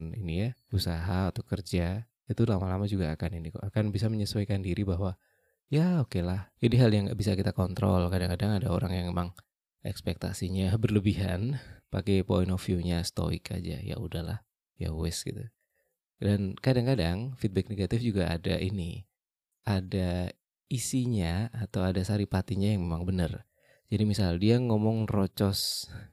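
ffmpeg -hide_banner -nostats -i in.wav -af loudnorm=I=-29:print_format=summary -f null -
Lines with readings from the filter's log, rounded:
Input Integrated:    -30.0 LUFS
Input True Peak:     -10.4 dBTP
Input LRA:             3.9 LU
Input Threshold:     -40.2 LUFS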